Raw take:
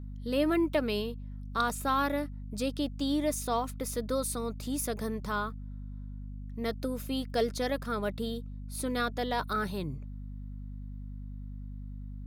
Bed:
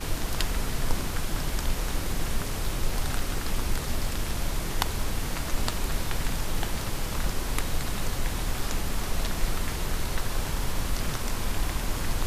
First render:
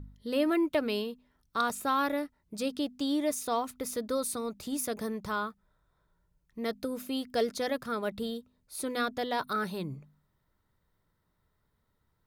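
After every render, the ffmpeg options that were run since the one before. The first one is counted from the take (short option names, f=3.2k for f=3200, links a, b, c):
-af "bandreject=f=50:t=h:w=4,bandreject=f=100:t=h:w=4,bandreject=f=150:t=h:w=4,bandreject=f=200:t=h:w=4,bandreject=f=250:t=h:w=4"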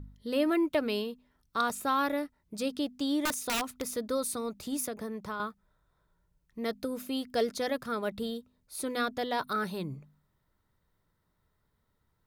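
-filter_complex "[0:a]asettb=1/sr,asplit=3[a][b][c];[a]atrim=end=3.254[d];[b]atrim=start=3.25:end=3.86,asetpts=PTS-STARTPTS,afade=t=in:d=0.004:c=qsin,afade=t=out:st=0.606:d=0.004:c=qsin,aeval=exprs='(mod(15.8*val(0)+1,2)-1)/15.8':c=same[e];[c]atrim=start=3.856[f];[d][e]acrossfade=d=0.004:c1=hsin:c2=qsin[g];[g][f]acrossfade=d=0.004:c1=qsin:c2=hsin,asettb=1/sr,asplit=3[h][i][j];[h]atrim=end=4.874[k];[i]atrim=start=4.87:end=5.4,asetpts=PTS-STARTPTS,afade=t=in:d=0.004:c=qsin,afade=t=out:st=0.526:d=0.004:c=qsin,acrossover=split=170|2500[l][m][n];[l]acompressor=threshold=-52dB:ratio=4[o];[m]acompressor=threshold=-34dB:ratio=4[p];[n]acompressor=threshold=-56dB:ratio=4[q];[o][p][q]amix=inputs=3:normalize=0[r];[j]atrim=start=5.396[s];[k][r]acrossfade=d=0.004:c1=hsin:c2=qsin[t];[t][s]acrossfade=d=0.004:c1=qsin:c2=hsin"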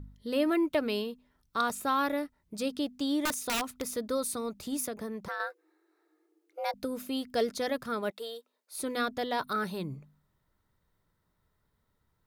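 -filter_complex "[0:a]asettb=1/sr,asplit=3[a][b][c];[a]atrim=end=5.284[d];[b]atrim=start=5.28:end=6.74,asetpts=PTS-STARTPTS,afade=t=in:d=0.004:c=qsin,afade=t=out:st=1.456:d=0.004:c=qsin,afreqshift=290[e];[c]atrim=start=6.736[f];[d][e]acrossfade=d=0.004:c1=hsin:c2=qsin[g];[g][f]acrossfade=d=0.004:c1=qsin:c2=hsin,asettb=1/sr,asplit=3[h][i][j];[h]atrim=end=8.104[k];[i]atrim=start=8.1:end=8.75,asetpts=PTS-STARTPTS,afade=t=in:d=0.004:c=qsin,afade=t=out:st=0.646:d=0.004:c=qsin,highpass=f=420:w=0.5412,highpass=f=420:w=1.3066[l];[j]atrim=start=8.746[m];[k][l]acrossfade=d=0.004:c1=hsin:c2=qsin[n];[n][m]acrossfade=d=0.004:c1=qsin:c2=hsin"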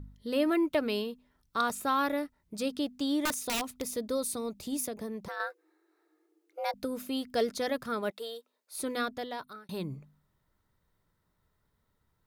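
-filter_complex "[0:a]asettb=1/sr,asplit=3[a][b][c];[a]atrim=end=3.454[d];[b]atrim=start=3.45:end=5.37,asetpts=PTS-STARTPTS,afade=t=in:d=0.004:c=qsin,afade=t=out:st=1.916:d=0.004:c=qsin,equalizer=f=1.4k:t=o:w=0.77:g=-6.5[e];[c]atrim=start=5.366[f];[d][e]acrossfade=d=0.004:c1=hsin:c2=qsin[g];[g][f]acrossfade=d=0.004:c1=qsin:c2=hsin,asplit=2[h][i];[h]atrim=end=9.69,asetpts=PTS-STARTPTS,afade=t=out:st=8.9:d=0.79[j];[i]atrim=start=9.69,asetpts=PTS-STARTPTS,afade=t=in:d=0.004:c=hsin[k];[j][k]concat=n=2:v=0:a=1"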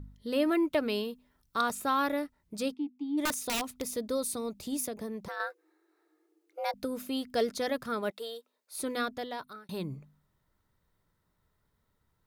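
-filter_complex "[0:a]asettb=1/sr,asplit=3[a][b][c];[a]atrim=end=1.034[d];[b]atrim=start=1.03:end=1.61,asetpts=PTS-STARTPTS,afade=t=in:d=0.004:c=qsin,afade=t=out:st=0.576:d=0.004:c=qsin,highshelf=f=8.9k:g=5.5[e];[c]atrim=start=1.606[f];[d][e]acrossfade=d=0.004:c1=hsin:c2=qsin[g];[g][f]acrossfade=d=0.004:c1=qsin:c2=hsin,asplit=3[h][i][j];[h]afade=t=out:st=2.73:d=0.02[k];[i]asplit=3[l][m][n];[l]bandpass=f=300:t=q:w=8,volume=0dB[o];[m]bandpass=f=870:t=q:w=8,volume=-6dB[p];[n]bandpass=f=2.24k:t=q:w=8,volume=-9dB[q];[o][p][q]amix=inputs=3:normalize=0,afade=t=in:st=2.73:d=0.02,afade=t=out:st=3.17:d=0.02[r];[j]afade=t=in:st=3.17:d=0.02[s];[k][r][s]amix=inputs=3:normalize=0"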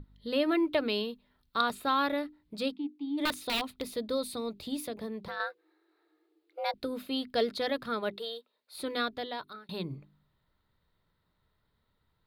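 -af "highshelf=f=5k:t=q:w=3:g=-7,bandreject=f=50:t=h:w=6,bandreject=f=100:t=h:w=6,bandreject=f=150:t=h:w=6,bandreject=f=200:t=h:w=6,bandreject=f=250:t=h:w=6,bandreject=f=300:t=h:w=6,bandreject=f=350:t=h:w=6,bandreject=f=400:t=h:w=6"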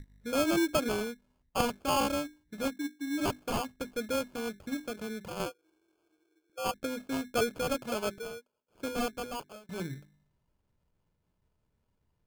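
-af "adynamicsmooth=sensitivity=5.5:basefreq=1.3k,acrusher=samples=23:mix=1:aa=0.000001"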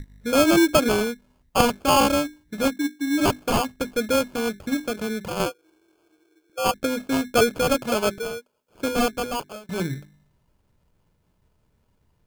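-af "volume=10.5dB"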